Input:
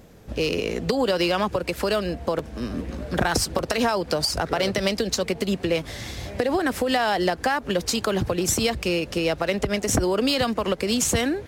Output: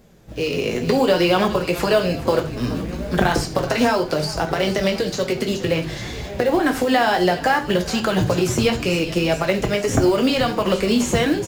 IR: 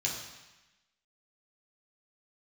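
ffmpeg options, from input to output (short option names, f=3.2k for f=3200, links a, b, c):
-filter_complex "[0:a]asettb=1/sr,asplit=3[a][b][c];[a]atrim=end=5.724[d];[b]atrim=start=5.72:end=6.63,asetpts=PTS-STARTPTS,afade=t=in:d=0.004:c=qsin,afade=t=out:st=0.906:d=0.004:c=qsin,highshelf=f=4.7k:g=-9.5[e];[c]atrim=start=6.626[f];[d][e]acrossfade=d=0.004:c1=hsin:c2=qsin[g];[g][f]acrossfade=d=0.004:c1=qsin:c2=hsin,asplit=5[h][i][j][k][l];[i]adelay=420,afreqshift=-54,volume=-17dB[m];[j]adelay=840,afreqshift=-108,volume=-23dB[n];[k]adelay=1260,afreqshift=-162,volume=-29dB[o];[l]adelay=1680,afreqshift=-216,volume=-35.1dB[p];[h][m][n][o][p]amix=inputs=5:normalize=0,dynaudnorm=f=160:g=7:m=11.5dB,flanger=delay=4.7:depth=3.7:regen=-28:speed=0.64:shape=triangular,acrossover=split=2800[q][r];[r]acompressor=threshold=-29dB:ratio=4:attack=1:release=60[s];[q][s]amix=inputs=2:normalize=0,acrusher=bits=7:mode=log:mix=0:aa=0.000001,asplit=2[t][u];[1:a]atrim=start_sample=2205,afade=t=out:st=0.14:d=0.01,atrim=end_sample=6615,adelay=16[v];[u][v]afir=irnorm=-1:irlink=0,volume=-9.5dB[w];[t][w]amix=inputs=2:normalize=0"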